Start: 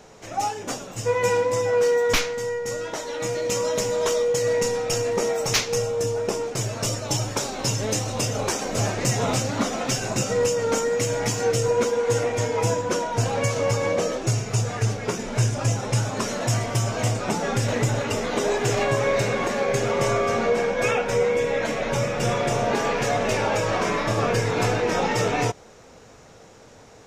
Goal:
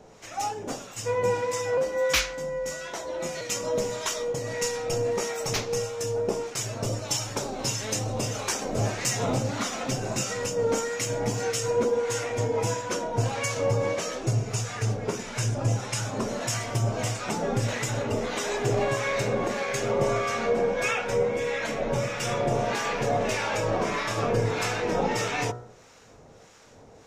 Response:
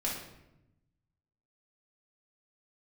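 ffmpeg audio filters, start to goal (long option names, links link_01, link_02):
-filter_complex "[0:a]acrossover=split=960[link_01][link_02];[link_01]aeval=exprs='val(0)*(1-0.7/2+0.7/2*cos(2*PI*1.6*n/s))':channel_layout=same[link_03];[link_02]aeval=exprs='val(0)*(1-0.7/2-0.7/2*cos(2*PI*1.6*n/s))':channel_layout=same[link_04];[link_03][link_04]amix=inputs=2:normalize=0,bandreject=frequency=60.19:width_type=h:width=4,bandreject=frequency=120.38:width_type=h:width=4,bandreject=frequency=180.57:width_type=h:width=4,bandreject=frequency=240.76:width_type=h:width=4,bandreject=frequency=300.95:width_type=h:width=4,bandreject=frequency=361.14:width_type=h:width=4,bandreject=frequency=421.33:width_type=h:width=4,bandreject=frequency=481.52:width_type=h:width=4,bandreject=frequency=541.71:width_type=h:width=4,bandreject=frequency=601.9:width_type=h:width=4,bandreject=frequency=662.09:width_type=h:width=4,bandreject=frequency=722.28:width_type=h:width=4,bandreject=frequency=782.47:width_type=h:width=4,bandreject=frequency=842.66:width_type=h:width=4,bandreject=frequency=902.85:width_type=h:width=4,bandreject=frequency=963.04:width_type=h:width=4,bandreject=frequency=1023.23:width_type=h:width=4,bandreject=frequency=1083.42:width_type=h:width=4,bandreject=frequency=1143.61:width_type=h:width=4,bandreject=frequency=1203.8:width_type=h:width=4,bandreject=frequency=1263.99:width_type=h:width=4,bandreject=frequency=1324.18:width_type=h:width=4,bandreject=frequency=1384.37:width_type=h:width=4,bandreject=frequency=1444.56:width_type=h:width=4,bandreject=frequency=1504.75:width_type=h:width=4,bandreject=frequency=1564.94:width_type=h:width=4,bandreject=frequency=1625.13:width_type=h:width=4,bandreject=frequency=1685.32:width_type=h:width=4,bandreject=frequency=1745.51:width_type=h:width=4,bandreject=frequency=1805.7:width_type=h:width=4,bandreject=frequency=1865.89:width_type=h:width=4,asettb=1/sr,asplit=3[link_05][link_06][link_07];[link_05]atrim=end=1.774[link_08];[link_06]atrim=start=1.77:end=3.41,asetpts=PTS-STARTPTS,afade=type=in:duration=0.004:curve=qsin,afade=type=out:start_time=1.636:duration=0.004:curve=qsin,afreqshift=40[link_09];[link_07]atrim=start=3.406[link_10];[link_08][link_09]acrossfade=duration=0.004:curve1=hsin:curve2=qsin[link_11];[link_11][link_10]acrossfade=duration=0.004:curve1=qsin:curve2=hsin"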